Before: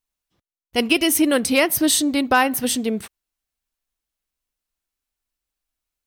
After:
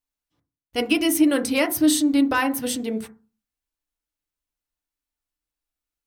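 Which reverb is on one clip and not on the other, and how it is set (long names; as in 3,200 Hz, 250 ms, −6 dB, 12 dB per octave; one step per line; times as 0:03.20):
feedback delay network reverb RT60 0.33 s, low-frequency decay 1.4×, high-frequency decay 0.25×, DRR 4.5 dB
level −5.5 dB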